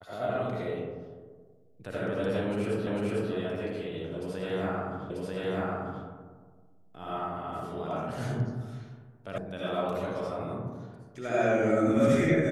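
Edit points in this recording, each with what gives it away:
2.87 s: repeat of the last 0.45 s
5.10 s: repeat of the last 0.94 s
9.38 s: sound stops dead

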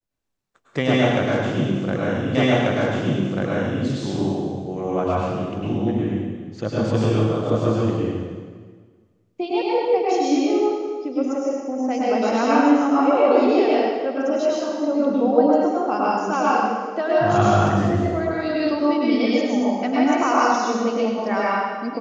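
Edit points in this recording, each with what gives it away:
2.35 s: repeat of the last 1.49 s

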